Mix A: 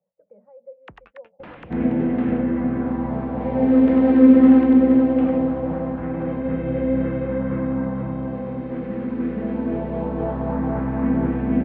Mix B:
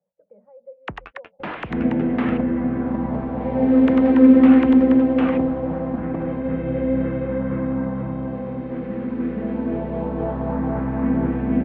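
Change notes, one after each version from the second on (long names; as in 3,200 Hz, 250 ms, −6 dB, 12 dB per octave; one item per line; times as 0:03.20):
first sound +12.0 dB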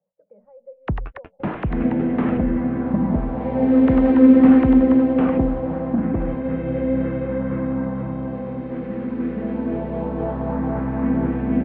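first sound: add spectral tilt −4.5 dB per octave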